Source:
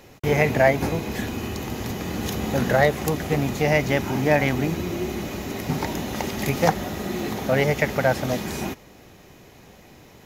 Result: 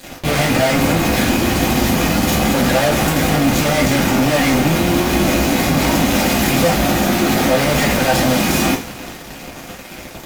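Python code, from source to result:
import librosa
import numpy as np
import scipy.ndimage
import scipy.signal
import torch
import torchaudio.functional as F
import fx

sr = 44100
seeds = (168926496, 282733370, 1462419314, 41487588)

y = fx.fuzz(x, sr, gain_db=41.0, gate_db=-45.0)
y = fx.rev_double_slope(y, sr, seeds[0], early_s=0.29, late_s=2.6, knee_db=-22, drr_db=-4.5)
y = y * 10.0 ** (-6.5 / 20.0)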